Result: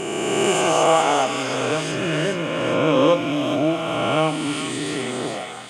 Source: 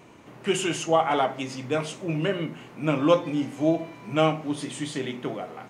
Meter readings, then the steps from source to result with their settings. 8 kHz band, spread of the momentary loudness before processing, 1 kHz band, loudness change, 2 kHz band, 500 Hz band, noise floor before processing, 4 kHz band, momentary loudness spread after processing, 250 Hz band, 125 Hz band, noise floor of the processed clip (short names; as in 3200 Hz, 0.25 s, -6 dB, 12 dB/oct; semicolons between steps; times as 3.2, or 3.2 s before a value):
+9.5 dB, 10 LU, +6.5 dB, +6.0 dB, +8.0 dB, +6.0 dB, -48 dBFS, +8.5 dB, 9 LU, +4.0 dB, +3.5 dB, -29 dBFS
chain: spectral swells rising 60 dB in 2.69 s; on a send: thin delay 0.411 s, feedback 46%, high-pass 1600 Hz, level -3 dB